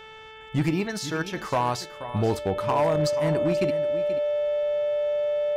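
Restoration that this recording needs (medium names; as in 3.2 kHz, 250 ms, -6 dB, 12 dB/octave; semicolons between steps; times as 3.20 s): clip repair -17 dBFS; de-hum 438.8 Hz, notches 8; band-stop 590 Hz, Q 30; inverse comb 482 ms -13.5 dB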